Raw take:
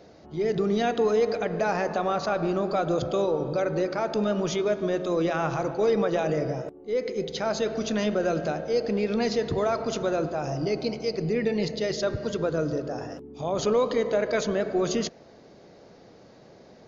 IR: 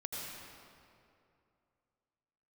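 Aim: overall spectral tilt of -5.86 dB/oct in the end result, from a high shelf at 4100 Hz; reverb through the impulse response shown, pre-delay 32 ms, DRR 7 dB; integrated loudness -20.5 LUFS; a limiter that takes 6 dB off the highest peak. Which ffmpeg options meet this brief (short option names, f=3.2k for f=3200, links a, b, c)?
-filter_complex "[0:a]highshelf=f=4.1k:g=-9,alimiter=limit=-19.5dB:level=0:latency=1,asplit=2[a][b];[1:a]atrim=start_sample=2205,adelay=32[c];[b][c]afir=irnorm=-1:irlink=0,volume=-8dB[d];[a][d]amix=inputs=2:normalize=0,volume=8dB"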